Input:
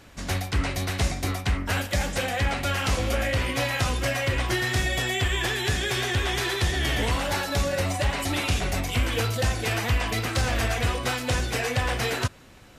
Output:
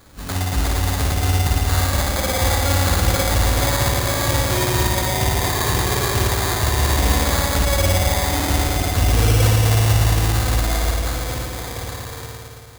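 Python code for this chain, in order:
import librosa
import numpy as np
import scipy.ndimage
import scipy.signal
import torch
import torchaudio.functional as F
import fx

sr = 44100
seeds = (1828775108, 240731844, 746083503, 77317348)

y = fx.fade_out_tail(x, sr, length_s=3.46)
y = fx.low_shelf(y, sr, hz=85.0, db=8.5)
y = fx.rev_spring(y, sr, rt60_s=2.9, pass_ms=(55,), chirp_ms=80, drr_db=-4.5)
y = fx.sample_hold(y, sr, seeds[0], rate_hz=2800.0, jitter_pct=0)
y = fx.high_shelf(y, sr, hz=3000.0, db=10.0)
y = y * librosa.db_to_amplitude(-2.0)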